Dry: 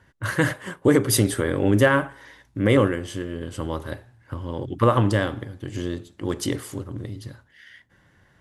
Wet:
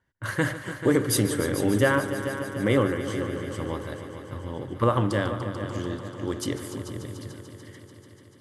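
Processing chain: hum notches 50/100 Hz; gate -47 dBFS, range -13 dB; band-stop 2.6 kHz, Q 19; on a send: multi-head delay 146 ms, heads all three, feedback 67%, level -15 dB; on the sum: trim -4 dB

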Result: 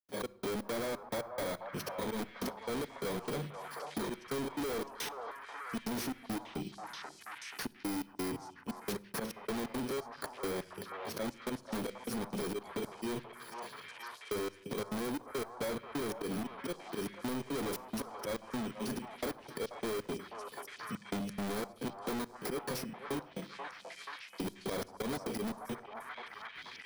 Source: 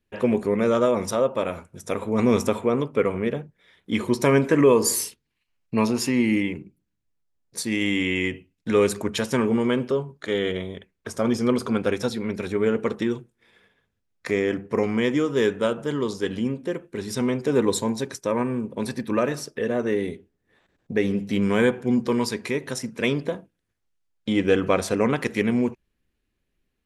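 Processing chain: bit-reversed sample order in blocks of 16 samples; high-pass 160 Hz 12 dB/octave; treble shelf 9.5 kHz -9.5 dB; slow attack 136 ms; hard clipper -37 dBFS, distortion -1 dB; trance gate ".xx..xx.xxx..x." 174 bpm -60 dB; repeats whose band climbs or falls 483 ms, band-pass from 880 Hz, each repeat 0.7 oct, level -5 dB; reverberation RT60 0.70 s, pre-delay 7 ms, DRR 18 dB; three bands compressed up and down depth 70%; trim +2.5 dB

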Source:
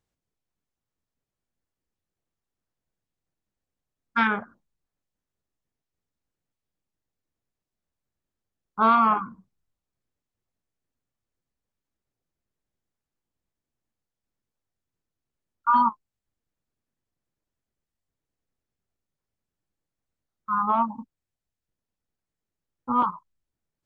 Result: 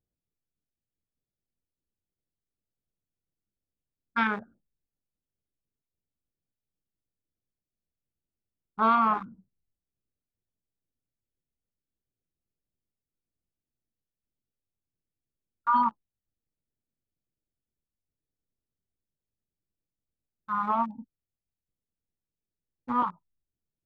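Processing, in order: local Wiener filter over 41 samples; trim -3.5 dB

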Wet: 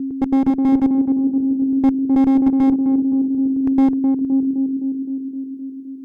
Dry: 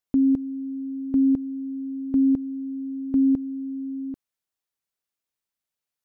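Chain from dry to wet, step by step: slices played last to first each 108 ms, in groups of 6; one-sided clip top -22.5 dBFS, bottom -18 dBFS; reverb removal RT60 1.1 s; on a send: band-passed feedback delay 258 ms, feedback 75%, band-pass 300 Hz, level -3 dB; on the sum: trim +7.5 dB

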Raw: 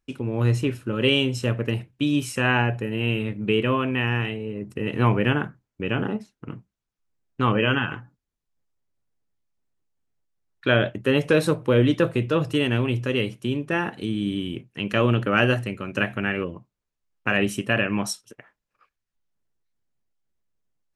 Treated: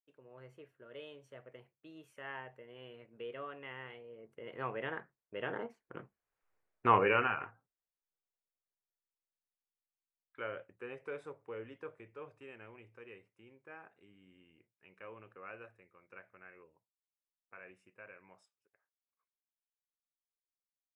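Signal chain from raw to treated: Doppler pass-by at 6.49 s, 28 m/s, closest 4.1 m; high-order bell 970 Hz +14 dB 3 oct; trim -6 dB

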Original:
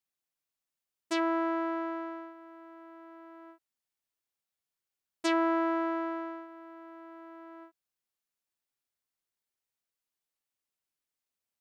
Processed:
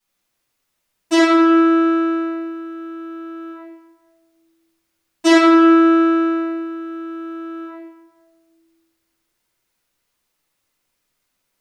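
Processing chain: simulated room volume 670 m³, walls mixed, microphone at 9.3 m; trim +3 dB

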